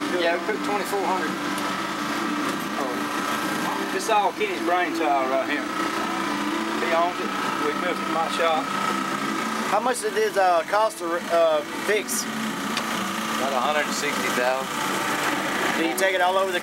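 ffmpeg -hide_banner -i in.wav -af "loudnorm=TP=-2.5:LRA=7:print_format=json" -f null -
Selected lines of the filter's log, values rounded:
"input_i" : "-23.5",
"input_tp" : "-7.1",
"input_lra" : "1.7",
"input_thresh" : "-33.5",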